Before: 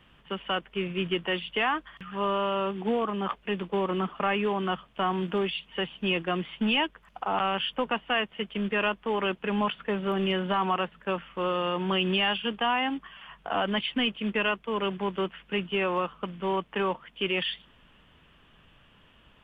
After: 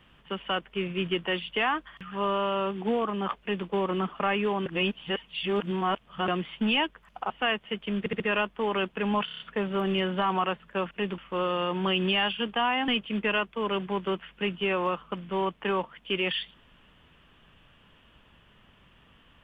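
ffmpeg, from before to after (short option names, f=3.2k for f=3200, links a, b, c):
-filter_complex "[0:a]asplit=15[a][b][c][d][e][f][g][h][i][j][k][l][m][n][o];[a]atrim=end=4.662[p];[b]atrim=start=4.658:end=6.282,asetpts=PTS-STARTPTS,areverse[q];[c]atrim=start=6.278:end=7.302[r];[d]atrim=start=7.978:end=8.742[s];[e]atrim=start=8.668:end=8.742[t];[f]atrim=start=8.668:end=8.742[u];[g]atrim=start=8.668:end=9.752[v];[h]atrim=start=9.718:end=9.752[w];[i]atrim=start=9.718:end=9.752[x];[j]atrim=start=9.718:end=9.752[y];[k]atrim=start=9.718:end=9.752[z];[l]atrim=start=9.718:end=11.232[aa];[m]atrim=start=3.398:end=3.672[ab];[n]atrim=start=11.228:end=12.932[ac];[o]atrim=start=13.988[ad];[p][q]acrossfade=d=0.004:c1=hsin:c2=hsin[ae];[ae][r]acrossfade=d=0.004:c1=hsin:c2=hsin[af];[af][s]acrossfade=d=0.004:c1=hsin:c2=hsin[ag];[ag][t]acrossfade=d=0.004:c1=hsin:c2=hsin[ah];[ah][u]acrossfade=d=0.004:c1=hsin:c2=hsin[ai];[ai][v]acrossfade=d=0.004:c1=hsin:c2=hsin[aj];[aj][w]acrossfade=d=0.004:c1=hsin:c2=hsin[ak];[ak][x]acrossfade=d=0.004:c1=hsin:c2=hsin[al];[al][y]acrossfade=d=0.004:c1=hsin:c2=hsin[am];[am][z]acrossfade=d=0.004:c1=hsin:c2=hsin[an];[an][aa]acrossfade=d=0.004:c1=hsin:c2=hsin[ao];[ao][ab]acrossfade=d=0.004:c1=hsin:c2=hsin[ap];[ap][ac]acrossfade=d=0.004:c1=hsin:c2=hsin[aq];[aq][ad]acrossfade=d=0.004:c1=hsin:c2=hsin"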